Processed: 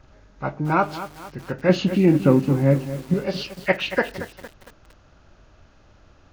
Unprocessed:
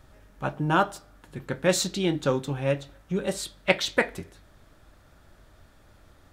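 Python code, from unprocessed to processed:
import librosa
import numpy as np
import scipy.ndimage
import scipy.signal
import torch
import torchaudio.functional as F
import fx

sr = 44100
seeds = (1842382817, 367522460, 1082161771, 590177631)

y = fx.freq_compress(x, sr, knee_hz=1400.0, ratio=1.5)
y = fx.graphic_eq_10(y, sr, hz=(125, 250, 4000), db=(6, 11, -9), at=(1.69, 3.14))
y = fx.echo_crushed(y, sr, ms=229, feedback_pct=55, bits=6, wet_db=-12.0)
y = F.gain(torch.from_numpy(y), 2.5).numpy()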